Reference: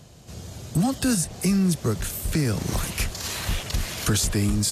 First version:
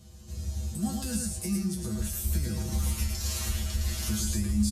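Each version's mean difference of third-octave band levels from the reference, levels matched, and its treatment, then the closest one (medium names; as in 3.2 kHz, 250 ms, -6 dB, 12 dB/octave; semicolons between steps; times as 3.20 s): 4.5 dB: tone controls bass +11 dB, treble +8 dB; peak limiter -13 dBFS, peak gain reduction 9 dB; feedback comb 71 Hz, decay 0.23 s, harmonics odd, mix 100%; delay 110 ms -3.5 dB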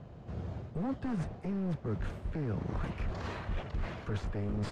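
10.0 dB: one-sided wavefolder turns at -20.5 dBFS; modulation noise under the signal 15 dB; low-pass 1.4 kHz 12 dB/octave; reverse; compression, threshold -32 dBFS, peak gain reduction 12.5 dB; reverse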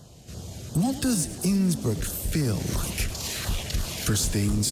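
2.5 dB: LFO notch saw down 2.9 Hz 770–2500 Hz; in parallel at -7.5 dB: overload inside the chain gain 29 dB; on the sum: short-mantissa float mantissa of 6-bit; frequency-shifting echo 106 ms, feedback 55%, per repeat +34 Hz, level -15.5 dB; trim -3 dB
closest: third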